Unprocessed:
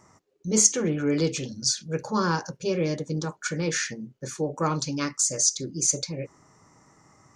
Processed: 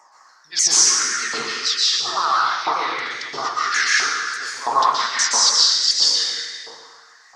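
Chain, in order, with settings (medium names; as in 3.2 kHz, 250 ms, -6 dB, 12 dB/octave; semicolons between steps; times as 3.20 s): sawtooth pitch modulation -5.5 st, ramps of 197 ms; plate-style reverb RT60 2.1 s, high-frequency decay 0.7×, pre-delay 110 ms, DRR -7 dB; LFO high-pass saw up 1.5 Hz 840–2000 Hz; trim +3.5 dB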